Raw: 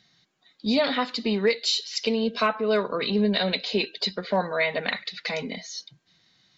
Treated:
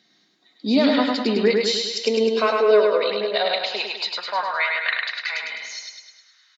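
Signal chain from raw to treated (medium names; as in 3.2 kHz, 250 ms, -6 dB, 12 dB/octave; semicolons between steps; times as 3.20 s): feedback delay 103 ms, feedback 56%, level -3 dB; high-pass sweep 280 Hz -> 1.4 kHz, 1.83–4.93 s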